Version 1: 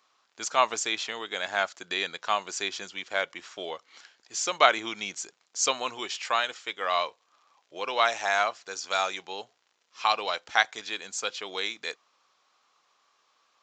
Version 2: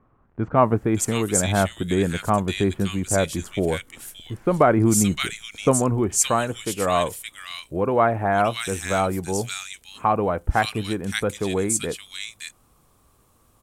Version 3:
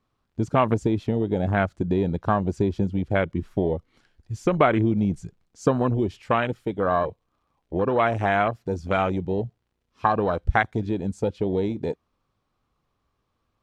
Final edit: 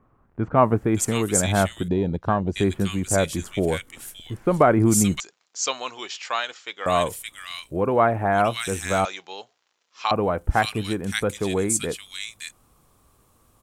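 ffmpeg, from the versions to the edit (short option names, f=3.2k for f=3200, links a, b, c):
-filter_complex "[0:a]asplit=2[a][b];[1:a]asplit=4[c][d][e][f];[c]atrim=end=1.882[g];[2:a]atrim=start=1.878:end=2.562[h];[d]atrim=start=2.558:end=5.202[i];[a]atrim=start=5.198:end=6.862[j];[e]atrim=start=6.858:end=9.052[k];[b]atrim=start=9.048:end=10.112[l];[f]atrim=start=10.108[m];[g][h]acrossfade=d=0.004:c1=hsin:c2=hsin[n];[n][i]acrossfade=d=0.004:c1=hsin:c2=hsin[o];[o][j]acrossfade=d=0.004:c1=hsin:c2=hsin[p];[p][k]acrossfade=d=0.004:c1=hsin:c2=hsin[q];[q][l]acrossfade=d=0.004:c1=hsin:c2=hsin[r];[r][m]acrossfade=d=0.004:c1=hsin:c2=hsin"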